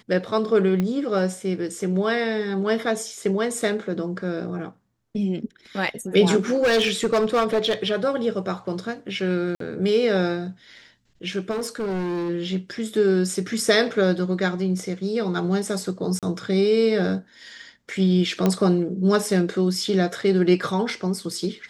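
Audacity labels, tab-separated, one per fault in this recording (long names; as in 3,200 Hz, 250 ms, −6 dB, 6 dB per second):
0.800000	0.800000	click −13 dBFS
6.540000	7.870000	clipping −15.5 dBFS
9.550000	9.600000	drop-out 53 ms
11.500000	12.300000	clipping −23 dBFS
16.190000	16.230000	drop-out 37 ms
18.460000	18.460000	click −8 dBFS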